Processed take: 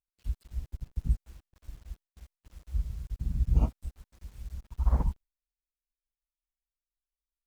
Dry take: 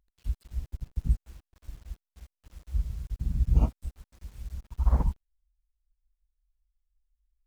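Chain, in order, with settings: gate with hold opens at -51 dBFS; trim -2 dB

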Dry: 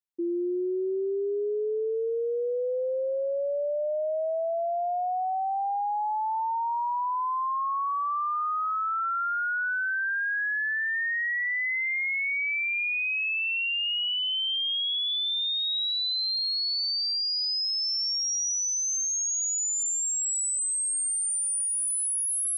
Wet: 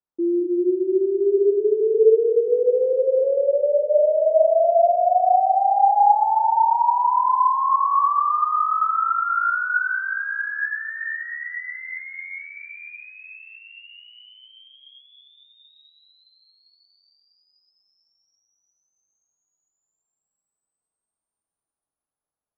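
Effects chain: low-pass 1.3 kHz 24 dB/octave; hum notches 60/120/180/240/300/360/420/480/540/600 Hz; on a send: feedback echo behind a low-pass 225 ms, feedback 67%, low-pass 790 Hz, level -8.5 dB; on the sum: gated-style reverb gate 290 ms rising, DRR -0.5 dB; trim +7 dB

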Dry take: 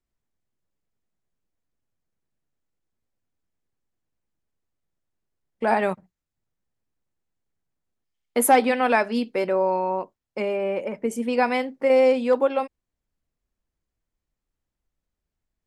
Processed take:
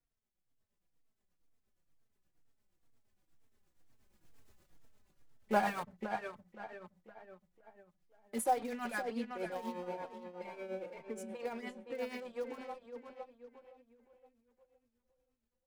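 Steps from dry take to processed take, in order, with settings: Doppler pass-by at 4.47 s, 11 m/s, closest 1.6 m; level rider gain up to 9 dB; in parallel at -10 dB: bit crusher 6-bit; on the sum: power-law waveshaper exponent 0.7; on a send: filtered feedback delay 517 ms, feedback 40%, low-pass 4.6 kHz, level -7 dB; on the sum: tremolo triangle 8.5 Hz, depth 70%; endless flanger 3.8 ms -2.1 Hz; trim +2 dB

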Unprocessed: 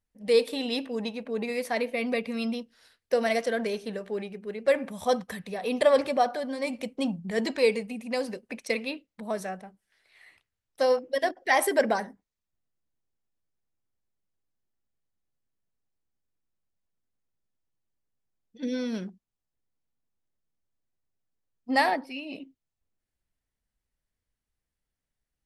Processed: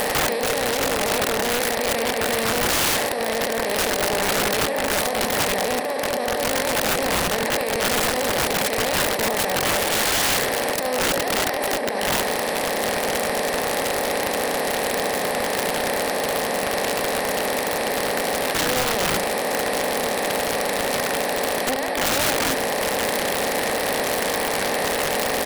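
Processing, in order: spectral levelling over time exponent 0.2; compressor with a negative ratio -21 dBFS, ratio -1; on a send: feedback delay 71 ms, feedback 36%, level -10 dB; on the sum: integer overflow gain 15 dB

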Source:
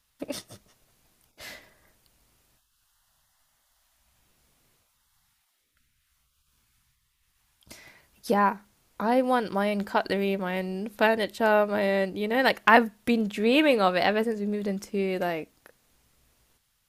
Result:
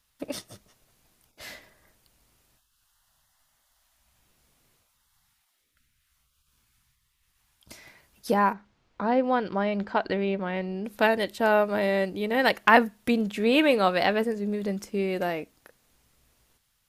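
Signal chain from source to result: 8.53–10.85 s: distance through air 160 m

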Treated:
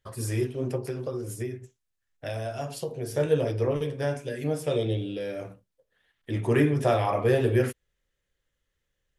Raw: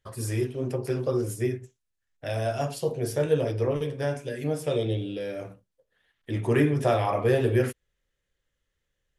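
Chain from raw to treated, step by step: 0.77–3.15 s: compression, threshold -29 dBFS, peak gain reduction 8 dB

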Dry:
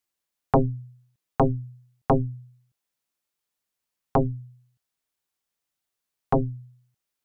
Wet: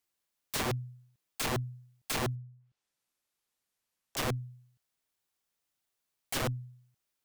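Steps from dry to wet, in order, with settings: integer overflow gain 27 dB; 2.35–4.17 s: low-pass that closes with the level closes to 680 Hz, closed at -46 dBFS

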